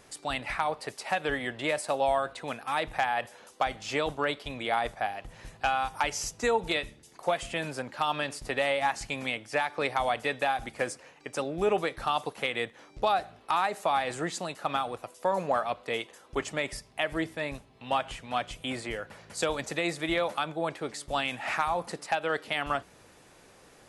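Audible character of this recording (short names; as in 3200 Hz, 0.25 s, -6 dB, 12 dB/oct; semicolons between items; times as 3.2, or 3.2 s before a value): noise floor -57 dBFS; spectral tilt -3.5 dB/oct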